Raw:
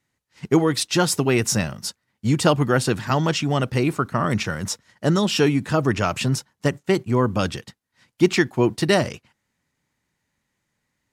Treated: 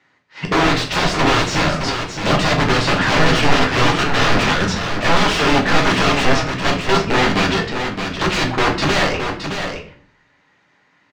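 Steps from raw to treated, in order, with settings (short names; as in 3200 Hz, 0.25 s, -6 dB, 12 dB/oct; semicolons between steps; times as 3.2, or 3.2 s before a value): HPF 75 Hz 6 dB/oct; in parallel at -2.5 dB: limiter -14 dBFS, peak gain reduction 9.5 dB; on the sum: overdrive pedal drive 24 dB, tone 3800 Hz, clips at -2.5 dBFS; wrapped overs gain 9 dB; air absorption 160 m; on a send: echo 0.618 s -7 dB; on the sum: shoebox room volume 48 m³, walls mixed, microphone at 0.59 m; gain -3.5 dB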